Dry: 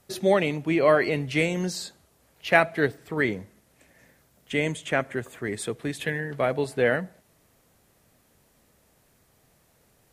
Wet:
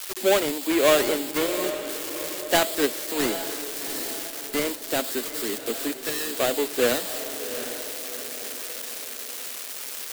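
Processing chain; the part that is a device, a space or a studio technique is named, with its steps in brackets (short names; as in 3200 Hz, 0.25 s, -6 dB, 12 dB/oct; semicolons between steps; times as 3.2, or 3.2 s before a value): steep high-pass 220 Hz 72 dB/oct; 4.84–5.25 air absorption 280 m; budget class-D amplifier (switching dead time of 0.25 ms; switching spikes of -16 dBFS); diffused feedback echo 0.762 s, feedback 50%, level -10.5 dB; gain +1.5 dB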